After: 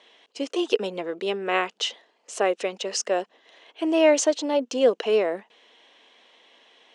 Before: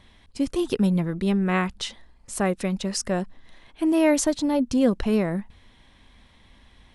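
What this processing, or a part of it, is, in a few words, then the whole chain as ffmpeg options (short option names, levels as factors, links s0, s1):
phone speaker on a table: -af "highpass=f=340:w=0.5412,highpass=f=340:w=1.3066,equalizer=f=460:t=q:w=4:g=8,equalizer=f=670:t=q:w=4:g=5,equalizer=f=2900:t=q:w=4:g=9,equalizer=f=6400:t=q:w=4:g=4,lowpass=f=7600:w=0.5412,lowpass=f=7600:w=1.3066"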